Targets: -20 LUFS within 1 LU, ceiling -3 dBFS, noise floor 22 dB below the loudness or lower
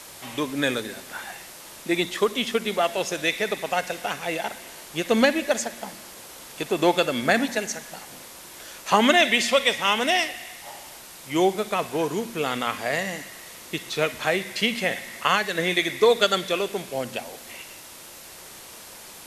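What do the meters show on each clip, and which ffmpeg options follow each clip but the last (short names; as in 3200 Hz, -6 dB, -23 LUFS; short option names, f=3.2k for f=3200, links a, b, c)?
noise floor -44 dBFS; noise floor target -46 dBFS; loudness -24.0 LUFS; peak -4.0 dBFS; loudness target -20.0 LUFS
-> -af "afftdn=nr=6:nf=-44"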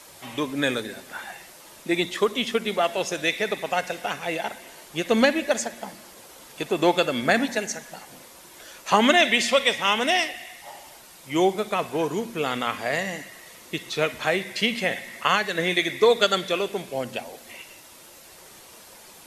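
noise floor -48 dBFS; loudness -24.0 LUFS; peak -4.0 dBFS; loudness target -20.0 LUFS
-> -af "volume=4dB,alimiter=limit=-3dB:level=0:latency=1"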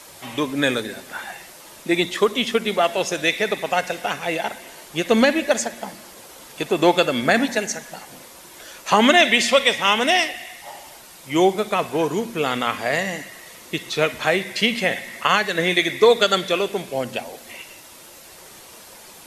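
loudness -20.0 LUFS; peak -3.0 dBFS; noise floor -44 dBFS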